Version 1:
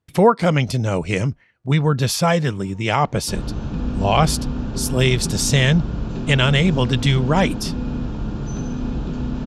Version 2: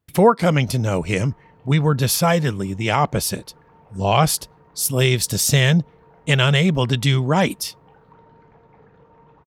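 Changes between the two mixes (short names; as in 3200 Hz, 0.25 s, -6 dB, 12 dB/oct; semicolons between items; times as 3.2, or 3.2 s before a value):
speech: remove LPF 8300 Hz 12 dB/oct; first sound: entry -1.85 s; second sound: muted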